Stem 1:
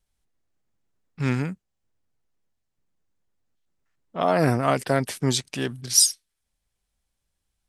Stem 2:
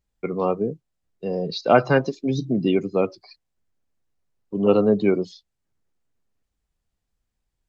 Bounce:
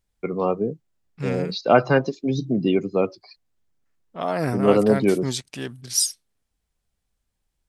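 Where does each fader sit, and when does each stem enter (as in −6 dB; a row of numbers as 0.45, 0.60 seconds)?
−4.0, 0.0 decibels; 0.00, 0.00 seconds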